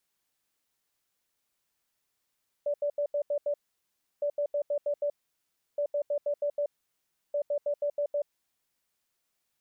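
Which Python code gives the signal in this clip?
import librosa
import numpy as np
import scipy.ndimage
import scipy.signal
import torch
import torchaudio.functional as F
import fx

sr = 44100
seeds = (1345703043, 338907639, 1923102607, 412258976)

y = fx.beep_pattern(sr, wave='sine', hz=581.0, on_s=0.08, off_s=0.08, beeps=6, pause_s=0.68, groups=4, level_db=-25.5)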